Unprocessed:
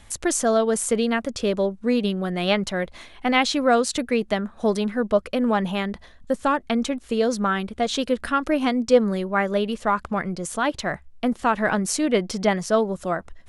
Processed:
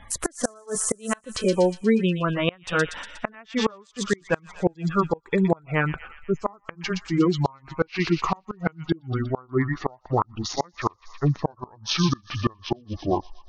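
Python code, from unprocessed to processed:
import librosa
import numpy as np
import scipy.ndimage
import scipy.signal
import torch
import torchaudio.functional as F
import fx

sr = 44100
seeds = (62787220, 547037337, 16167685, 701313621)

y = fx.pitch_glide(x, sr, semitones=-11.0, runs='starting unshifted')
y = fx.spec_gate(y, sr, threshold_db=-25, keep='strong')
y = fx.peak_eq(y, sr, hz=1200.0, db=10.5, octaves=1.1)
y = fx.echo_wet_highpass(y, sr, ms=120, feedback_pct=59, hz=3500.0, wet_db=-3.5)
y = fx.gate_flip(y, sr, shuts_db=-11.0, range_db=-31)
y = y * librosa.db_to_amplitude(1.5)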